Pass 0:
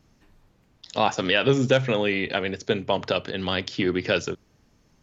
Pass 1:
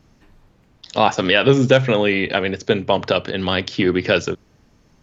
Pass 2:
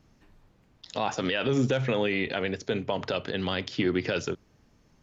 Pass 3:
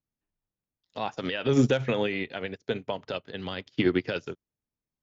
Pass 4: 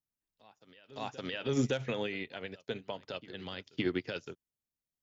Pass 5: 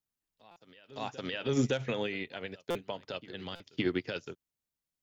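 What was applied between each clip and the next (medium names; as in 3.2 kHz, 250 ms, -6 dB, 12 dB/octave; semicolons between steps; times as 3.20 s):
treble shelf 5.3 kHz -5 dB; trim +6.5 dB
peak limiter -9 dBFS, peak gain reduction 7.5 dB; trim -7 dB
upward expansion 2.5:1, over -46 dBFS; trim +5.5 dB
treble shelf 4.7 kHz +9 dB; reverse echo 564 ms -20.5 dB; trim -8.5 dB
buffer glitch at 0.51/2.70/3.55 s, samples 256, times 8; trim +1.5 dB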